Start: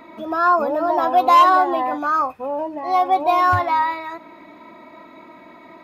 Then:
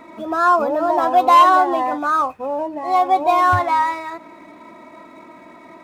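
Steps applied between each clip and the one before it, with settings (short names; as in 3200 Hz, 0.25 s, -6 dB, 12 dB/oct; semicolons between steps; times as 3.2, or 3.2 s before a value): median filter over 9 samples; gain +1.5 dB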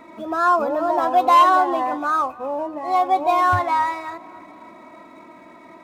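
tape echo 0.275 s, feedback 68%, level -21.5 dB, low-pass 2300 Hz; gain -2.5 dB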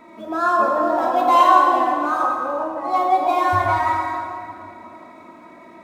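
plate-style reverb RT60 2.5 s, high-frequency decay 0.65×, DRR -1.5 dB; gain -3 dB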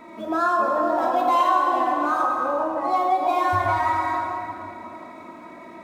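compressor 2.5:1, threshold -22 dBFS, peak gain reduction 9.5 dB; gain +2 dB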